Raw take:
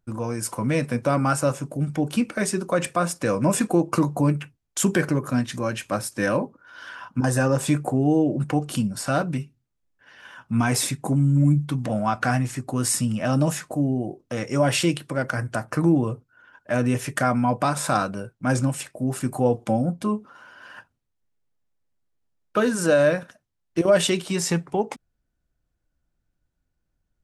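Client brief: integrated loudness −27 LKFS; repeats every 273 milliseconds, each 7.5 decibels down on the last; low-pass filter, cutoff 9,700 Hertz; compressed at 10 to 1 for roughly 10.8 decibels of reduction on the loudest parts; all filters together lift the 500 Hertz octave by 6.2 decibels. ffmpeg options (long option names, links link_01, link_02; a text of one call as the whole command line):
ffmpeg -i in.wav -af "lowpass=9700,equalizer=frequency=500:width_type=o:gain=7.5,acompressor=threshold=-19dB:ratio=10,aecho=1:1:273|546|819|1092|1365:0.422|0.177|0.0744|0.0312|0.0131,volume=-2dB" out.wav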